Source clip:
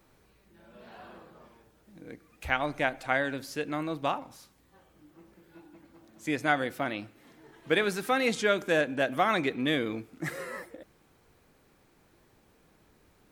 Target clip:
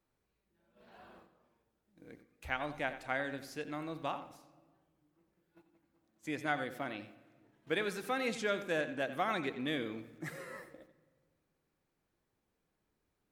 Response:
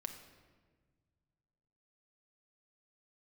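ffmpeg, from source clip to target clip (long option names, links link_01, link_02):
-filter_complex "[0:a]agate=range=-11dB:threshold=-50dB:ratio=16:detection=peak,asplit=2[link_01][link_02];[1:a]atrim=start_sample=2205,lowpass=6900,adelay=88[link_03];[link_02][link_03]afir=irnorm=-1:irlink=0,volume=-9dB[link_04];[link_01][link_04]amix=inputs=2:normalize=0,volume=-8.5dB"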